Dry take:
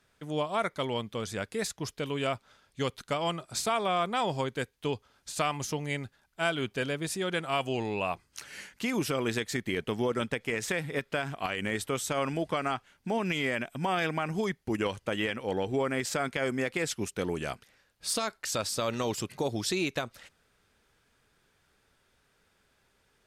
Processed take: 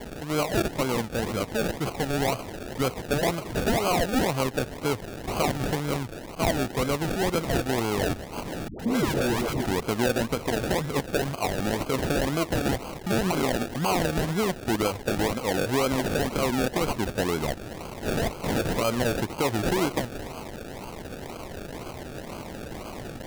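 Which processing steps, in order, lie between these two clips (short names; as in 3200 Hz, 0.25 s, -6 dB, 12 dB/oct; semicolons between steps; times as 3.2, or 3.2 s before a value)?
switching spikes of -28.5 dBFS; steep low-pass 7700 Hz 36 dB/oct; on a send at -16 dB: reverb RT60 0.60 s, pre-delay 3 ms; on the sum: decimation with a swept rate 34×, swing 60% 2 Hz; in parallel at +0.5 dB: limiter -25 dBFS, peak gain reduction 11.5 dB; 8.68–9.66 on the sum: dispersion highs, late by 0.113 s, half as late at 450 Hz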